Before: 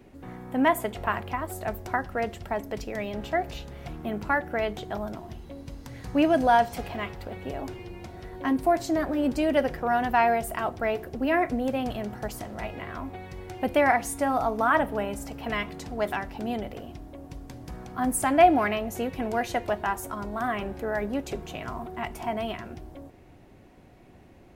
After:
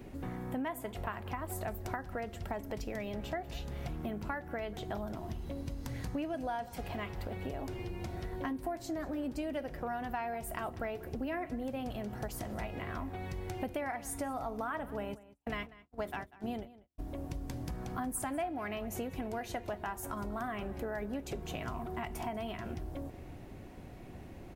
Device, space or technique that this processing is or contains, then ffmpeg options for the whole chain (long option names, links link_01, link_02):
ASMR close-microphone chain: -filter_complex "[0:a]asplit=3[link_01][link_02][link_03];[link_01]afade=type=out:start_time=15.13:duration=0.02[link_04];[link_02]agate=range=-57dB:threshold=-30dB:ratio=16:detection=peak,afade=type=in:start_time=15.13:duration=0.02,afade=type=out:start_time=16.98:duration=0.02[link_05];[link_03]afade=type=in:start_time=16.98:duration=0.02[link_06];[link_04][link_05][link_06]amix=inputs=3:normalize=0,lowshelf=frequency=180:gain=5,acompressor=threshold=-38dB:ratio=6,highshelf=frequency=9400:gain=4.5,asplit=2[link_07][link_08];[link_08]adelay=192.4,volume=-18dB,highshelf=frequency=4000:gain=-4.33[link_09];[link_07][link_09]amix=inputs=2:normalize=0,volume=2dB"